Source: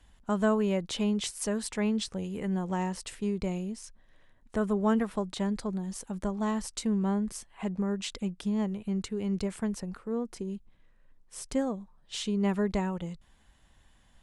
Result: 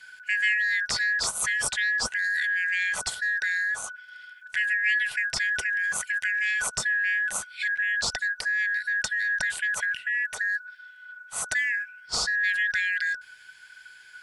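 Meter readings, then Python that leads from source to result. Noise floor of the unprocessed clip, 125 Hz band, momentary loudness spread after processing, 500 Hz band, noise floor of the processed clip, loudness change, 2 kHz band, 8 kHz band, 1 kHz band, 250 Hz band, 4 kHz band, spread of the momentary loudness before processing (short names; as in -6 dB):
-62 dBFS, under -15 dB, 8 LU, -15.5 dB, -50 dBFS, +6.0 dB, +24.0 dB, +10.0 dB, -3.0 dB, under -25 dB, +8.5 dB, 10 LU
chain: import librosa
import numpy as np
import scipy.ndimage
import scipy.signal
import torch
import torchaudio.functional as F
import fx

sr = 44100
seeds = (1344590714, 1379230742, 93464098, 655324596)

p1 = fx.band_shuffle(x, sr, order='4123')
p2 = fx.peak_eq(p1, sr, hz=310.0, db=-15.0, octaves=0.36)
p3 = fx.over_compress(p2, sr, threshold_db=-37.0, ratio=-1.0)
y = p2 + F.gain(torch.from_numpy(p3), 2.5).numpy()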